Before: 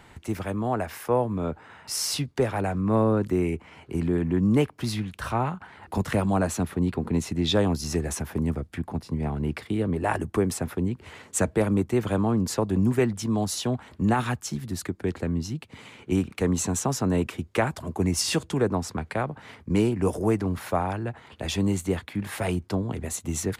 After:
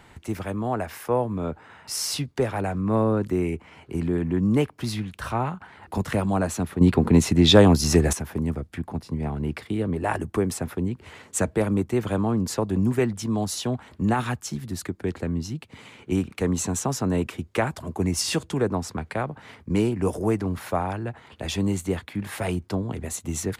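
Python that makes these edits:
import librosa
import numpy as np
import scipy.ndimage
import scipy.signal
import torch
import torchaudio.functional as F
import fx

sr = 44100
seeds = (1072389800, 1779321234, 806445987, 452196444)

y = fx.edit(x, sr, fx.clip_gain(start_s=6.81, length_s=1.32, db=8.5), tone=tone)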